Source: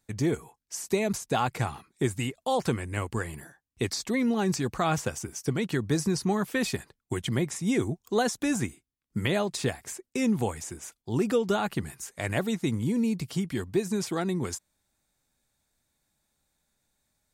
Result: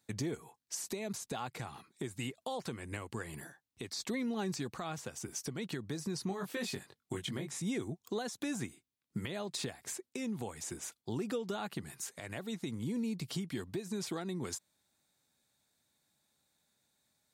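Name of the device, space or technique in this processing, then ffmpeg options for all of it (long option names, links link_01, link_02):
broadcast voice chain: -filter_complex "[0:a]asettb=1/sr,asplit=3[link_01][link_02][link_03];[link_01]atrim=end=6.284[link_04];[link_02]atrim=start=6.28:end=7.62,asetpts=PTS-STARTPTS,afade=type=in:duration=0.004:curve=qsin,afade=type=out:start_time=1.336:duration=0.004:curve=qsin,asplit=2[link_05][link_06];[link_06]adelay=21,volume=-3.5dB[link_07];[link_05][link_07]amix=inputs=2:normalize=0,atrim=end_sample=59094[link_08];[link_03]atrim=start=7.616[link_09];[link_04][link_08]acrossfade=duration=0.004:curve1=hsin:curve2=qsin[link_10];[link_10][link_09]acrossfade=duration=0.004:curve1=qsin:curve2=hsin,highpass=110,deesser=0.55,acompressor=threshold=-34dB:ratio=3,equalizer=frequency=3900:width_type=o:width=0.53:gain=4.5,alimiter=level_in=1.5dB:limit=-24dB:level=0:latency=1:release=284,volume=-1.5dB,volume=-1.5dB"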